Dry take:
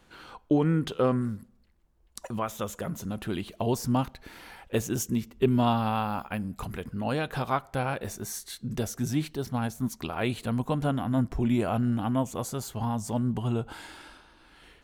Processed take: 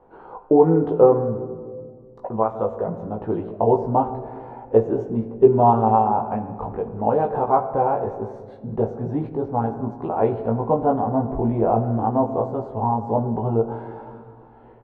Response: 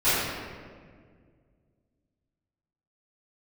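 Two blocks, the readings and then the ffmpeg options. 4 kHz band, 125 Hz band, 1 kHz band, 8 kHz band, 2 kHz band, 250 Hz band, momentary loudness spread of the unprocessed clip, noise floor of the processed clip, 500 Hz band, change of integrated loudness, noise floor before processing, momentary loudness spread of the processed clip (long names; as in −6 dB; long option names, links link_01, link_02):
below −20 dB, +3.5 dB, +12.0 dB, below −35 dB, −7.0 dB, +4.0 dB, 11 LU, −46 dBFS, +13.0 dB, +8.0 dB, −61 dBFS, 17 LU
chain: -filter_complex "[0:a]lowpass=frequency=860:width_type=q:width=3.4,equalizer=frequency=440:width=1.7:gain=10,asplit=2[link_01][link_02];[link_02]adelay=18,volume=-2.5dB[link_03];[link_01][link_03]amix=inputs=2:normalize=0,asplit=2[link_04][link_05];[1:a]atrim=start_sample=2205[link_06];[link_05][link_06]afir=irnorm=-1:irlink=0,volume=-26.5dB[link_07];[link_04][link_07]amix=inputs=2:normalize=0,volume=-1dB"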